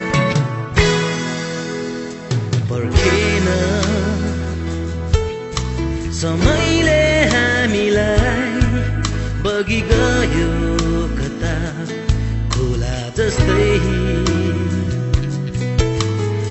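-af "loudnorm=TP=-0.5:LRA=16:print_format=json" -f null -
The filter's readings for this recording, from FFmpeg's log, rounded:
"input_i" : "-17.8",
"input_tp" : "-1.4",
"input_lra" : "2.7",
"input_thresh" : "-27.8",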